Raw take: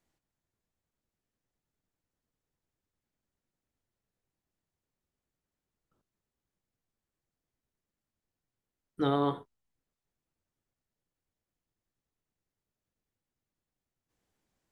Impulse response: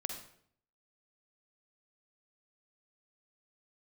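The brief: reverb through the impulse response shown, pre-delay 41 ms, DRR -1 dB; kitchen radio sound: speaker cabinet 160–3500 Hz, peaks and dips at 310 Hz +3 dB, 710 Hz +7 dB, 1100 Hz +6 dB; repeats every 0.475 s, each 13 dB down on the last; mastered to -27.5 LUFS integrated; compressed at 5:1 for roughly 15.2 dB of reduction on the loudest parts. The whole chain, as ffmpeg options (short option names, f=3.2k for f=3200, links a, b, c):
-filter_complex "[0:a]acompressor=threshold=-41dB:ratio=5,aecho=1:1:475|950|1425:0.224|0.0493|0.0108,asplit=2[a][b];[1:a]atrim=start_sample=2205,adelay=41[c];[b][c]afir=irnorm=-1:irlink=0,volume=0.5dB[d];[a][d]amix=inputs=2:normalize=0,highpass=160,equalizer=f=310:t=q:w=4:g=3,equalizer=f=710:t=q:w=4:g=7,equalizer=f=1.1k:t=q:w=4:g=6,lowpass=f=3.5k:w=0.5412,lowpass=f=3.5k:w=1.3066,volume=14.5dB"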